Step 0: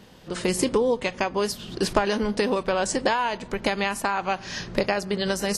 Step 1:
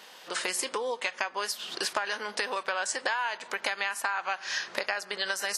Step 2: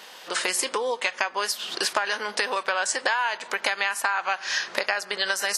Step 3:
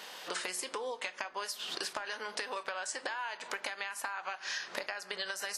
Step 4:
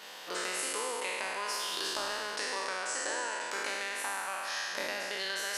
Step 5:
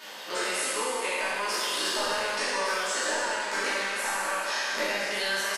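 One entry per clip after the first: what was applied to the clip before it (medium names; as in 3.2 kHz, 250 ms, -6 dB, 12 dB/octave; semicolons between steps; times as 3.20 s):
high-pass 850 Hz 12 dB/octave; dynamic bell 1.6 kHz, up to +6 dB, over -42 dBFS, Q 2.6; compression 3:1, threshold -36 dBFS, peak gain reduction 13.5 dB; trim +6 dB
bass shelf 190 Hz -4.5 dB; trim +5.5 dB
compression 5:1, threshold -33 dBFS, peak gain reduction 14 dB; simulated room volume 310 m³, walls furnished, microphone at 0.34 m; trim -2.5 dB
spectral sustain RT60 2.76 s; trim -3 dB
on a send: delay 1160 ms -7.5 dB; on the sum: simulated room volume 190 m³, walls furnished, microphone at 2.7 m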